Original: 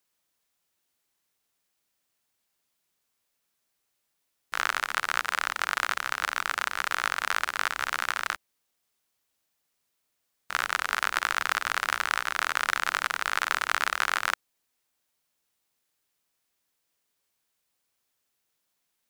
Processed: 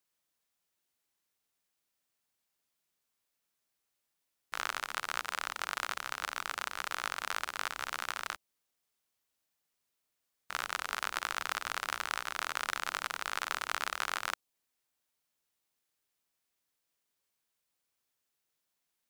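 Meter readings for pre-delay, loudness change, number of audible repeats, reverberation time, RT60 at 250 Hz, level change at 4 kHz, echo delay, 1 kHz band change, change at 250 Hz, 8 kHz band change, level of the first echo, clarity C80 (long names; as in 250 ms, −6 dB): no reverb audible, −8.5 dB, no echo audible, no reverb audible, no reverb audible, −6.5 dB, no echo audible, −8.0 dB, −5.5 dB, −5.5 dB, no echo audible, no reverb audible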